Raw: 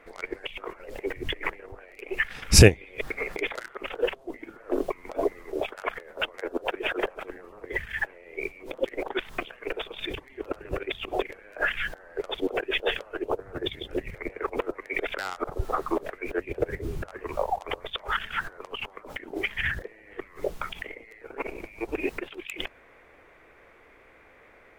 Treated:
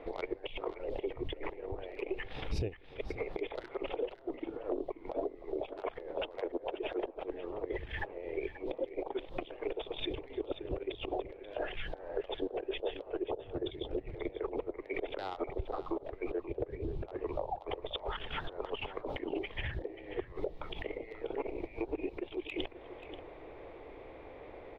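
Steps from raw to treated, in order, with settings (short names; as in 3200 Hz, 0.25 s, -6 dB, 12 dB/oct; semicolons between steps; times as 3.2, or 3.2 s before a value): EQ curve 130 Hz 0 dB, 210 Hz -6 dB, 310 Hz +2 dB, 860 Hz -1 dB, 1500 Hz -16 dB, 3700 Hz -5 dB, 7300 Hz -28 dB; compressor 8:1, threshold -42 dBFS, peak gain reduction 31.5 dB; echo 0.534 s -13 dB; gain +8 dB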